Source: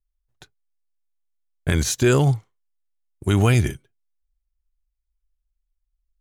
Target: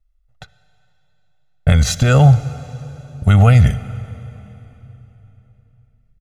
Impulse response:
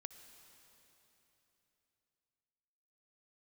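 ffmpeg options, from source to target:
-filter_complex "[0:a]lowpass=f=2.1k:p=1,equalizer=f=390:t=o:w=0.24:g=-9.5,alimiter=limit=-15.5dB:level=0:latency=1:release=43,aecho=1:1:1.5:0.98,asplit=2[a][b];[1:a]atrim=start_sample=2205[c];[b][c]afir=irnorm=-1:irlink=0,volume=4.5dB[d];[a][d]amix=inputs=2:normalize=0,volume=3.5dB"

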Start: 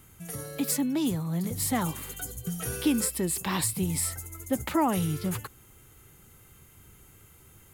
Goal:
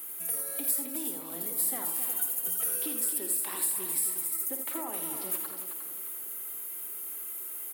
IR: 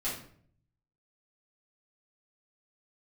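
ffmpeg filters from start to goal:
-filter_complex "[0:a]highpass=f=300:w=0.5412,highpass=f=300:w=1.3066,acompressor=threshold=-50dB:ratio=2.5,asplit=2[a][b];[b]aecho=0:1:356|712|1068|1424:0.316|0.108|0.0366|0.0124[c];[a][c]amix=inputs=2:normalize=0,aexciter=amount=5.2:drive=6.3:freq=8.9k,asplit=2[d][e];[e]aecho=0:1:53|83|95|192|266:0.316|0.398|0.119|0.126|0.376[f];[d][f]amix=inputs=2:normalize=0,aeval=exprs='val(0)*gte(abs(val(0)),0.00141)':c=same,volume=3.5dB"

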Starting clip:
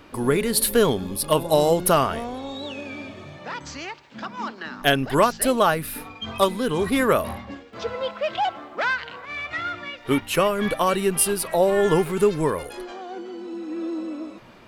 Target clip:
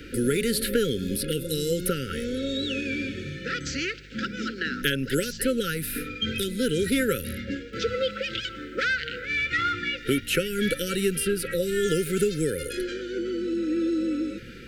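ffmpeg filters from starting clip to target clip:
-filter_complex "[0:a]acrossover=split=150|3200[a][b][c];[a]acompressor=threshold=-43dB:ratio=4[d];[b]acompressor=threshold=-30dB:ratio=4[e];[c]acompressor=threshold=-39dB:ratio=4[f];[d][e][f]amix=inputs=3:normalize=0,afftfilt=real='re*(1-between(b*sr/4096,550,1300))':imag='im*(1-between(b*sr/4096,550,1300))':win_size=4096:overlap=0.75,aeval=exprs='val(0)+0.00158*(sin(2*PI*50*n/s)+sin(2*PI*2*50*n/s)/2+sin(2*PI*3*50*n/s)/3+sin(2*PI*4*50*n/s)/4+sin(2*PI*5*50*n/s)/5)':c=same,volume=6.5dB"

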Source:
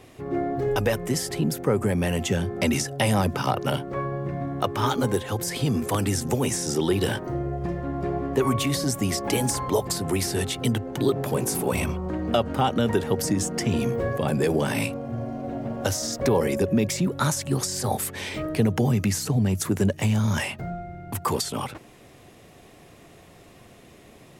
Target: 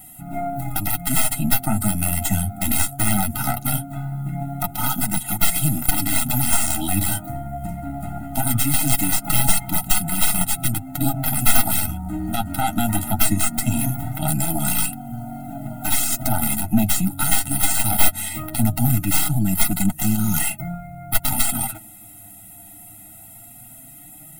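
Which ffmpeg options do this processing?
-af "aexciter=amount=8.9:drive=9.1:freq=8.2k,aeval=exprs='2.11*(cos(1*acos(clip(val(0)/2.11,-1,1)))-cos(1*PI/2))+0.0119*(cos(3*acos(clip(val(0)/2.11,-1,1)))-cos(3*PI/2))+0.841*(cos(4*acos(clip(val(0)/2.11,-1,1)))-cos(4*PI/2))+0.075*(cos(6*acos(clip(val(0)/2.11,-1,1)))-cos(6*PI/2))+0.376*(cos(8*acos(clip(val(0)/2.11,-1,1)))-cos(8*PI/2))':c=same,flanger=delay=5.4:depth=4.7:regen=25:speed=0.2:shape=sinusoidal,volume=0.5dB,asoftclip=hard,volume=-0.5dB,alimiter=level_in=8dB:limit=-1dB:release=50:level=0:latency=1,afftfilt=real='re*eq(mod(floor(b*sr/1024/310),2),0)':imag='im*eq(mod(floor(b*sr/1024/310),2),0)':win_size=1024:overlap=0.75,volume=-2dB"

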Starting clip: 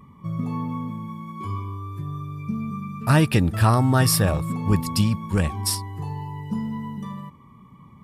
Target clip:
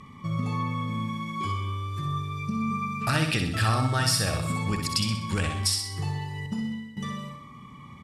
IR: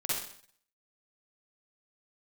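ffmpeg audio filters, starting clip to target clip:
-filter_complex "[0:a]lowpass=7k,bandreject=f=980:w=6.8,asettb=1/sr,asplit=3[a][b][c];[a]atrim=end=6.464[d];[b]atrim=start=6.46:end=6.97,asetpts=PTS-STARTPTS,afade=t=in:d=0.004:c=qsin,afade=t=out:st=0.506:d=0.004:c=qsin,agate=range=-33dB:threshold=-22dB:ratio=3:detection=peak[e];[c]atrim=start=6.966[f];[d][e]acrossfade=d=0.004:c1=hsin:c2=qsin[g];[g][f]acrossfade=d=0.004:c1=qsin:c2=hsin,tiltshelf=f=1.4k:g=-7,acompressor=threshold=-34dB:ratio=3,aecho=1:1:63|126|189|252|315|378:0.501|0.231|0.106|0.0488|0.0224|0.0103,asplit=2[h][i];[1:a]atrim=start_sample=2205[j];[i][j]afir=irnorm=-1:irlink=0,volume=-16.5dB[k];[h][k]amix=inputs=2:normalize=0,volume=6dB"

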